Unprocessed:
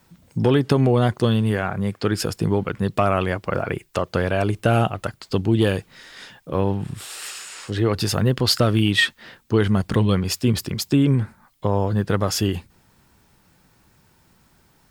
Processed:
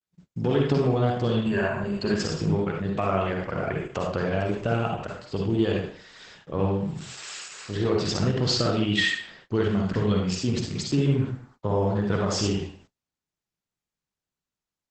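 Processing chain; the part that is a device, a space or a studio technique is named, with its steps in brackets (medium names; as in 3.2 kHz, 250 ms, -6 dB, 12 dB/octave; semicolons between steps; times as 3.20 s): 1.45–2.14 s: rippled EQ curve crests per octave 1.4, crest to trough 17 dB; speakerphone in a meeting room (reverberation RT60 0.50 s, pre-delay 44 ms, DRR -0.5 dB; level rider gain up to 4 dB; gate -42 dBFS, range -35 dB; trim -8.5 dB; Opus 12 kbps 48 kHz)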